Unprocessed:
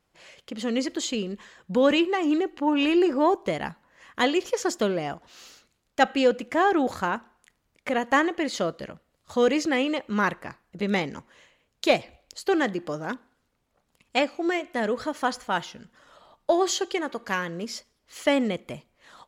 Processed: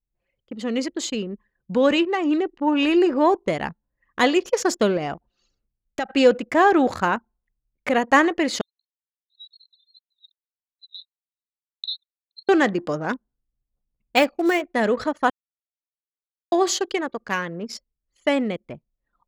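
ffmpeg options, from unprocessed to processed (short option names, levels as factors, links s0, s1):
-filter_complex "[0:a]asettb=1/sr,asplit=3[s0][s1][s2];[s0]atrim=end=4.974[s3];[s1]atrim=start=4.97:end=6.09,asetpts=PTS-STARTPTS,afade=t=in:d=0.004:c=qsin,afade=t=out:st=1.116:d=0.004:c=qsin,acompressor=threshold=0.0447:ratio=6:attack=3.2:release=140:knee=1:detection=peak[s4];[s2]atrim=start=6.086[s5];[s3][s4]acrossfade=d=0.004:c1=hsin:c2=qsin[s6];[s6][s5]acrossfade=d=0.004:c1=qsin:c2=hsin,asettb=1/sr,asplit=3[s7][s8][s9];[s7]atrim=end=8.614[s10];[s8]atrim=start=8.61:end=12.49,asetpts=PTS-STARTPTS,afade=t=in:d=0.004:c=qsin,afade=t=out:st=3.876:d=0.004:c=qsin,asuperpass=centerf=3900:order=20:qfactor=4.9[s11];[s9]atrim=start=12.486[s12];[s10][s11]acrossfade=d=0.004:c1=hsin:c2=qsin[s13];[s13][s12]acrossfade=d=0.004:c1=qsin:c2=hsin,asettb=1/sr,asplit=3[s14][s15][s16];[s14]atrim=end=14.164[s17];[s15]atrim=start=14.16:end=14.74,asetpts=PTS-STARTPTS,afade=t=in:d=0.004:c=qsin,afade=t=out:st=0.576:d=0.004:c=qsin,acrusher=bits=6:mode=log:mix=0:aa=0.000001[s18];[s16]atrim=start=14.736[s19];[s17][s18]acrossfade=d=0.004:c1=hsin:c2=qsin[s20];[s20][s19]acrossfade=d=0.004:c1=qsin:c2=hsin,asplit=3[s21][s22][s23];[s21]atrim=end=15.3,asetpts=PTS-STARTPTS,afade=t=out:st=15.296:d=0.004:c=hsin[s24];[s22]atrim=start=15.3:end=16.52,asetpts=PTS-STARTPTS,volume=0[s25];[s23]atrim=start=16.52,asetpts=PTS-STARTPTS,afade=t=in:d=0.004:c=hsin[s26];[s24][s25][s26]concat=n=3:v=0:a=1,dynaudnorm=f=410:g=17:m=1.68,anlmdn=3.98,bandreject=f=3200:w=22,volume=1.19"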